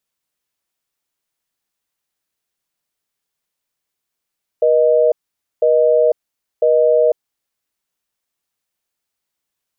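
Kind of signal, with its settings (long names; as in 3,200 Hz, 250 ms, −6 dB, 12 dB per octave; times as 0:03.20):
call progress tone busy tone, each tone −12.5 dBFS 2.83 s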